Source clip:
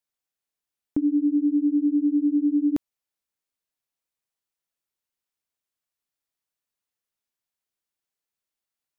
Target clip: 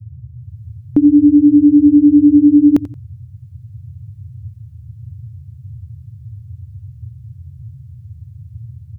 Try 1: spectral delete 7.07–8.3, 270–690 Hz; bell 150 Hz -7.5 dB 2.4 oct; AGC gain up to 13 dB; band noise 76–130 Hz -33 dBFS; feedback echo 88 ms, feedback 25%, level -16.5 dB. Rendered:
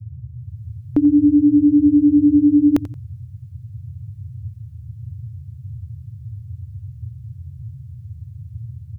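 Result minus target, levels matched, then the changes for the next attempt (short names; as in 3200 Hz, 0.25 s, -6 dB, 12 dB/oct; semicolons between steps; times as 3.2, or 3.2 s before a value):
125 Hz band +4.5 dB
change: bell 150 Hz +3 dB 2.4 oct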